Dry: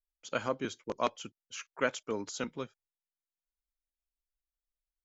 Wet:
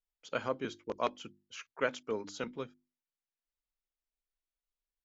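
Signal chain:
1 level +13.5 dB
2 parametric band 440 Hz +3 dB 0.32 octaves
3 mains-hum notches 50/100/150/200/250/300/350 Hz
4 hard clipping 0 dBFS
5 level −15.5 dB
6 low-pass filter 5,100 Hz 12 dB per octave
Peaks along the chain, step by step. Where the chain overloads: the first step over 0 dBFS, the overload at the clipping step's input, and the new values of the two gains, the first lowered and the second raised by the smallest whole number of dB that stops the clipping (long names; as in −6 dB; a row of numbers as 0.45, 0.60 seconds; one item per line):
−1.5, −1.0, −1.5, −1.5, −17.0, −17.0 dBFS
no step passes full scale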